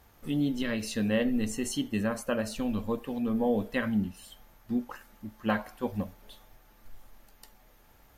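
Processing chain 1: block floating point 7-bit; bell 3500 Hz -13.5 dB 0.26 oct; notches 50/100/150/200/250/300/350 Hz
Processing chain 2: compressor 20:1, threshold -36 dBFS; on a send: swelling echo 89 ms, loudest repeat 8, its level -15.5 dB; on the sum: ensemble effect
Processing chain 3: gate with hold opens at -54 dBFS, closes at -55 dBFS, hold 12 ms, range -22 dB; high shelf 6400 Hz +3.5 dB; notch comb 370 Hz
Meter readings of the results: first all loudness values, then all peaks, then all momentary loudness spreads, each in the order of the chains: -32.0, -44.0, -31.5 LUFS; -13.5, -28.5, -16.5 dBFS; 10, 12, 10 LU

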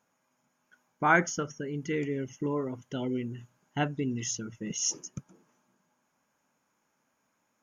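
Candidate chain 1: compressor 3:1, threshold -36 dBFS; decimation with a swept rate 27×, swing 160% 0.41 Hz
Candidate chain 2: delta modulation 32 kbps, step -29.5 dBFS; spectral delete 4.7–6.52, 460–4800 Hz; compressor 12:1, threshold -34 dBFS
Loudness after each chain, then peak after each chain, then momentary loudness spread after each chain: -39.5, -37.5 LUFS; -24.5, -25.0 dBFS; 7, 4 LU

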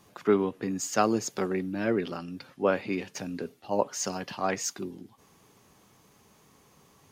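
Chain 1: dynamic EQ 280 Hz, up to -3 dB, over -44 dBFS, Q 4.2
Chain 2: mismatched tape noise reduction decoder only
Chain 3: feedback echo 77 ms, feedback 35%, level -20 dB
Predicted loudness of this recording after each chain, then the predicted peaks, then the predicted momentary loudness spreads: -30.5, -30.0, -30.0 LUFS; -8.0, -8.0, -8.0 dBFS; 13, 13, 13 LU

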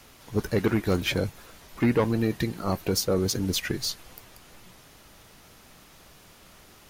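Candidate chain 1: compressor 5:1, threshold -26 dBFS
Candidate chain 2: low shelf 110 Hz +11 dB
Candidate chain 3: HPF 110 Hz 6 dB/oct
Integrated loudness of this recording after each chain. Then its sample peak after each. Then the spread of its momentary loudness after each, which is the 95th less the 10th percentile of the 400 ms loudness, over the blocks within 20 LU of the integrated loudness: -31.5, -24.5, -27.5 LUFS; -17.0, -9.5, -13.5 dBFS; 20, 7, 8 LU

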